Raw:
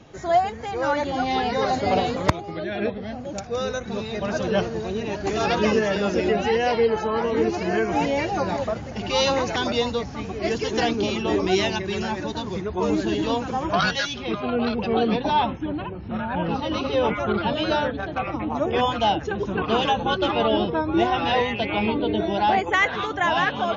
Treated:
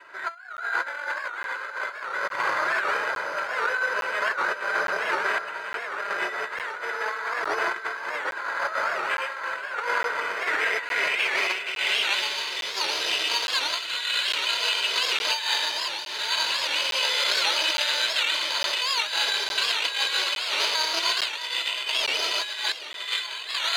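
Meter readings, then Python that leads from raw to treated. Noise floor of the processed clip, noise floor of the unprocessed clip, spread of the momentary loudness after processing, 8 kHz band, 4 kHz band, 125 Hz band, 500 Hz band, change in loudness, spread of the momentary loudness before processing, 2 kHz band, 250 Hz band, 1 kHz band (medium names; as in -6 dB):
-36 dBFS, -34 dBFS, 8 LU, no reading, +7.0 dB, under -30 dB, -12.5 dB, -1.0 dB, 7 LU, +4.0 dB, -24.0 dB, -5.5 dB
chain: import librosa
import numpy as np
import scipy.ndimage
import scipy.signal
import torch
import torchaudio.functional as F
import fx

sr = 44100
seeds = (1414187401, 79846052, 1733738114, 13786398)

y = fx.lower_of_two(x, sr, delay_ms=2.0)
y = fx.high_shelf(y, sr, hz=3400.0, db=12.0)
y = fx.room_shoebox(y, sr, seeds[0], volume_m3=2900.0, walls='mixed', distance_m=2.9)
y = np.repeat(scipy.signal.resample_poly(y, 1, 8), 8)[:len(y)]
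y = fx.filter_sweep_bandpass(y, sr, from_hz=1500.0, to_hz=3300.0, start_s=10.19, end_s=12.32, q=3.0)
y = fx.over_compress(y, sr, threshold_db=-35.0, ratio=-0.5)
y = fx.highpass(y, sr, hz=490.0, slope=6)
y = fx.peak_eq(y, sr, hz=4500.0, db=3.0, octaves=0.2)
y = fx.notch(y, sr, hz=3300.0, q=15.0)
y = fx.echo_split(y, sr, split_hz=2100.0, low_ms=633, high_ms=468, feedback_pct=52, wet_db=-13.5)
y = fx.buffer_crackle(y, sr, first_s=0.57, period_s=0.86, block=512, kind='zero')
y = fx.record_warp(y, sr, rpm=78.0, depth_cents=160.0)
y = y * librosa.db_to_amplitude(9.0)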